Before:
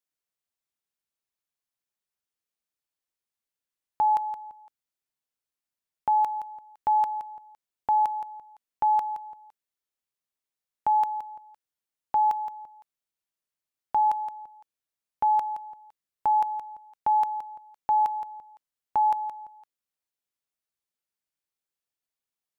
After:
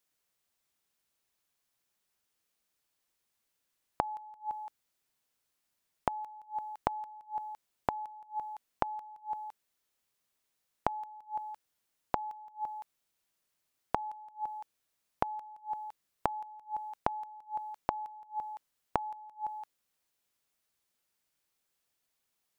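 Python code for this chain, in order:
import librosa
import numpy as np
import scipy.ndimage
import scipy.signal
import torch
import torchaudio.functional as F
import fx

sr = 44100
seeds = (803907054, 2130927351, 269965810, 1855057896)

y = fx.gate_flip(x, sr, shuts_db=-29.0, range_db=-27)
y = F.gain(torch.from_numpy(y), 9.0).numpy()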